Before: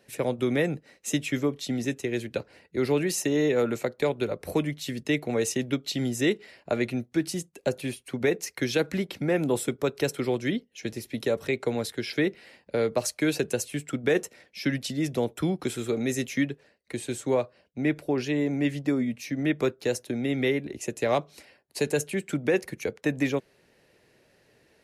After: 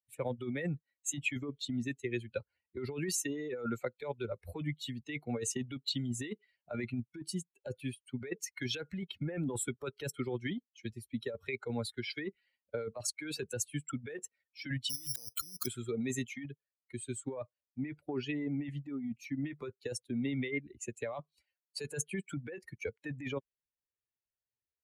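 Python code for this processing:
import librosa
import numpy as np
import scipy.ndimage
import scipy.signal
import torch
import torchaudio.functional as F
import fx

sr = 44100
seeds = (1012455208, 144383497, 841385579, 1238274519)

y = fx.resample_bad(x, sr, factor=8, down='none', up='zero_stuff', at=(14.9, 15.66))
y = fx.bin_expand(y, sr, power=2.0)
y = fx.over_compress(y, sr, threshold_db=-35.0, ratio=-1.0)
y = fx.dynamic_eq(y, sr, hz=1700.0, q=0.77, threshold_db=-54.0, ratio=4.0, max_db=4)
y = F.gain(torch.from_numpy(y), -2.5).numpy()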